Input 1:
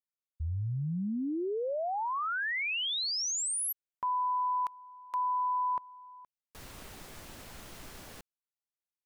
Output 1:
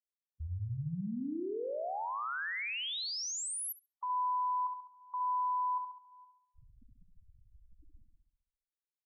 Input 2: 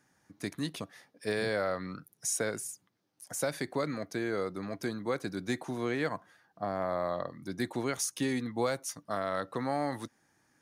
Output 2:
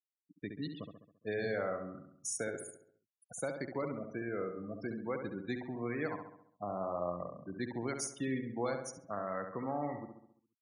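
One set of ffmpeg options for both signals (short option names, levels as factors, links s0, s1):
-filter_complex "[0:a]afftfilt=real='re*gte(hypot(re,im),0.0224)':imag='im*gte(hypot(re,im),0.0224)':win_size=1024:overlap=0.75,asplit=2[s0][s1];[s1]adelay=68,lowpass=f=2400:p=1,volume=0.501,asplit=2[s2][s3];[s3]adelay=68,lowpass=f=2400:p=1,volume=0.54,asplit=2[s4][s5];[s5]adelay=68,lowpass=f=2400:p=1,volume=0.54,asplit=2[s6][s7];[s7]adelay=68,lowpass=f=2400:p=1,volume=0.54,asplit=2[s8][s9];[s9]adelay=68,lowpass=f=2400:p=1,volume=0.54,asplit=2[s10][s11];[s11]adelay=68,lowpass=f=2400:p=1,volume=0.54,asplit=2[s12][s13];[s13]adelay=68,lowpass=f=2400:p=1,volume=0.54[s14];[s0][s2][s4][s6][s8][s10][s12][s14]amix=inputs=8:normalize=0,volume=0.531"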